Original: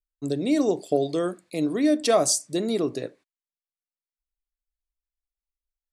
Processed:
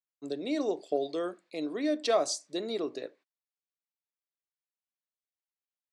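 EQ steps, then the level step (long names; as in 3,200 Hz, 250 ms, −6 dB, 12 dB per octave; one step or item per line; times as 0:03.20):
dynamic equaliser 4,000 Hz, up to +5 dB, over −51 dBFS, Q 7.3
band-pass filter 340–5,100 Hz
−5.5 dB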